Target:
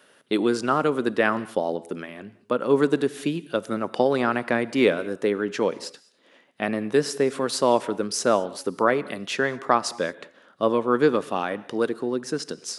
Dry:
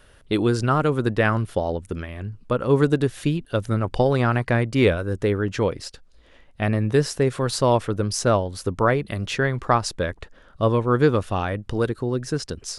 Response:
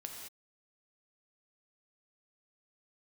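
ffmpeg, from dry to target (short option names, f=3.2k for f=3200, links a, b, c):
-filter_complex "[0:a]highpass=f=200:w=0.5412,highpass=f=200:w=1.3066,asplit=2[a][b];[1:a]atrim=start_sample=2205[c];[b][c]afir=irnorm=-1:irlink=0,volume=-10dB[d];[a][d]amix=inputs=2:normalize=0,volume=-2dB"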